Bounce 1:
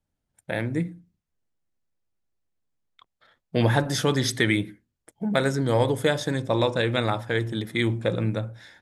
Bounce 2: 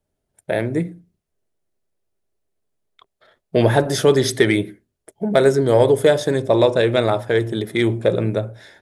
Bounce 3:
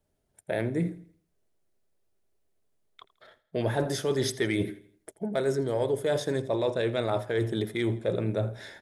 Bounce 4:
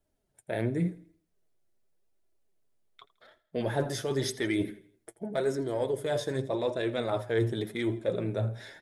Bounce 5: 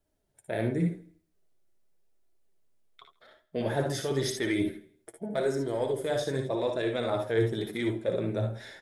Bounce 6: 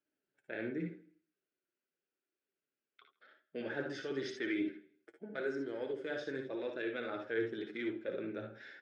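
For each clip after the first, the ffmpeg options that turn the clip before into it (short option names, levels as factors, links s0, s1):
-af "acontrast=41,equalizer=f=400:t=o:w=0.33:g=12,equalizer=f=630:t=o:w=0.33:g=9,equalizer=f=10000:t=o:w=0.33:g=5,volume=0.75"
-af "areverse,acompressor=threshold=0.0562:ratio=6,areverse,aecho=1:1:82|164|246|328:0.112|0.0505|0.0227|0.0102"
-af "flanger=delay=2.9:depth=5.9:regen=43:speed=0.88:shape=sinusoidal,volume=1.19"
-af "aecho=1:1:58|71:0.422|0.335"
-af "highpass=260,equalizer=f=290:t=q:w=4:g=5,equalizer=f=670:t=q:w=4:g=-9,equalizer=f=980:t=q:w=4:g=-10,equalizer=f=1500:t=q:w=4:g=9,equalizer=f=2600:t=q:w=4:g=5,equalizer=f=3800:t=q:w=4:g=-6,lowpass=f=4800:w=0.5412,lowpass=f=4800:w=1.3066,volume=0.398"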